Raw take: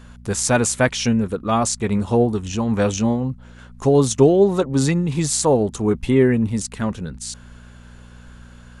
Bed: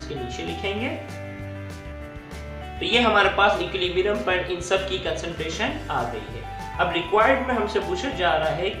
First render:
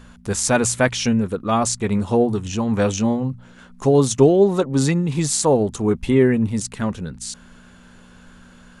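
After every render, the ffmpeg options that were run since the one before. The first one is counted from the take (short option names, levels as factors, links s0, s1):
-af "bandreject=f=60:t=h:w=4,bandreject=f=120:t=h:w=4"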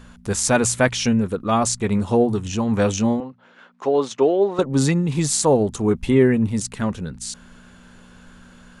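-filter_complex "[0:a]asettb=1/sr,asplit=3[s0][s1][s2];[s0]atrim=end=3.204[s3];[s1]atrim=start=3.2:end=4.59,asetpts=PTS-STARTPTS,afade=t=in:d=0.004:c=qsin,afade=t=out:st=1.386:d=0.004:c=qsin,highpass=420,lowpass=3400[s4];[s2]atrim=start=4.586[s5];[s3][s4]acrossfade=d=0.004:c1=hsin:c2=qsin[s6];[s6][s5]acrossfade=d=0.004:c1=qsin:c2=hsin"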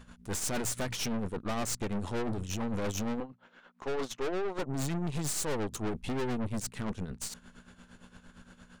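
-af "tremolo=f=8.7:d=0.72,aeval=exprs='(tanh(35.5*val(0)+0.8)-tanh(0.8))/35.5':c=same"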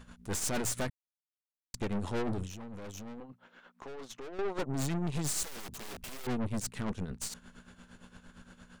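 -filter_complex "[0:a]asettb=1/sr,asplit=3[s0][s1][s2];[s0]atrim=end=2.474[s3];[s1]atrim=start=2.47:end=4.39,asetpts=PTS-STARTPTS,afade=t=in:d=0.004:c=qsin,afade=t=out:st=1.916:d=0.004:c=qsin,acompressor=threshold=0.00891:ratio=6:attack=3.2:release=140:knee=1:detection=peak[s4];[s2]atrim=start=4.386[s5];[s3][s4]acrossfade=d=0.004:c1=hsin:c2=qsin[s6];[s6][s5]acrossfade=d=0.004:c1=qsin:c2=hsin,asettb=1/sr,asplit=3[s7][s8][s9];[s7]atrim=end=5.434[s10];[s8]atrim=start=5.43:end=6.27,asetpts=PTS-STARTPTS,afade=t=in:d=0.004:c=qsin,afade=t=out:st=0.836:d=0.004:c=qsin,aeval=exprs='(mod(75*val(0)+1,2)-1)/75':c=same[s11];[s9]atrim=start=6.266[s12];[s10][s11]acrossfade=d=0.004:c1=hsin:c2=qsin[s13];[s13][s12]acrossfade=d=0.004:c1=qsin:c2=hsin,asplit=3[s14][s15][s16];[s14]atrim=end=0.9,asetpts=PTS-STARTPTS,afade=t=out:st=0.896:d=0.004:c=hsin[s17];[s15]atrim=start=0.9:end=1.74,asetpts=PTS-STARTPTS,volume=0[s18];[s16]atrim=start=1.74,asetpts=PTS-STARTPTS,afade=t=in:d=0.004:c=hsin[s19];[s17][s18][s19]concat=n=3:v=0:a=1"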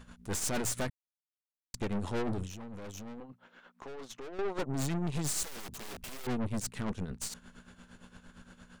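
-af anull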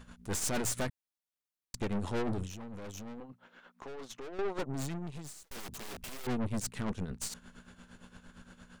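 -filter_complex "[0:a]asplit=2[s0][s1];[s0]atrim=end=5.51,asetpts=PTS-STARTPTS,afade=t=out:st=4.44:d=1.07[s2];[s1]atrim=start=5.51,asetpts=PTS-STARTPTS,afade=t=in:d=0.004:c=hsin[s3];[s2][s3]concat=n=2:v=0:a=1"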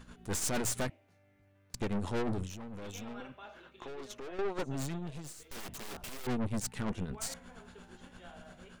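-filter_complex "[1:a]volume=0.0237[s0];[0:a][s0]amix=inputs=2:normalize=0"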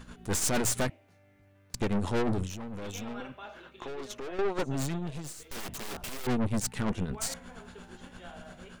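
-af "volume=1.78"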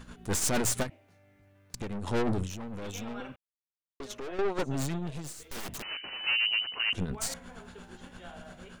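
-filter_complex "[0:a]asplit=3[s0][s1][s2];[s0]afade=t=out:st=0.82:d=0.02[s3];[s1]acompressor=threshold=0.0224:ratio=4:attack=3.2:release=140:knee=1:detection=peak,afade=t=in:st=0.82:d=0.02,afade=t=out:st=2.06:d=0.02[s4];[s2]afade=t=in:st=2.06:d=0.02[s5];[s3][s4][s5]amix=inputs=3:normalize=0,asettb=1/sr,asplit=3[s6][s7][s8];[s6]atrim=end=5.824[s9];[s7]atrim=start=5.82:end=6.93,asetpts=PTS-STARTPTS,afade=t=in:d=0.004:c=qsin,afade=t=out:st=1.106:d=0.004:c=qsin,lowpass=f=2600:t=q:w=0.5098,lowpass=f=2600:t=q:w=0.6013,lowpass=f=2600:t=q:w=0.9,lowpass=f=2600:t=q:w=2.563,afreqshift=-3000[s10];[s8]atrim=start=6.926[s11];[s9][s10]acrossfade=d=0.004:c1=hsin:c2=qsin[s12];[s12][s11]acrossfade=d=0.004:c1=qsin:c2=hsin,asplit=3[s13][s14][s15];[s13]atrim=end=3.36,asetpts=PTS-STARTPTS,afade=t=out:st=3.356:d=0.004:c=hsin[s16];[s14]atrim=start=3.36:end=4,asetpts=PTS-STARTPTS,volume=0[s17];[s15]atrim=start=4,asetpts=PTS-STARTPTS,afade=t=in:d=0.004:c=hsin[s18];[s16][s17][s18]concat=n=3:v=0:a=1"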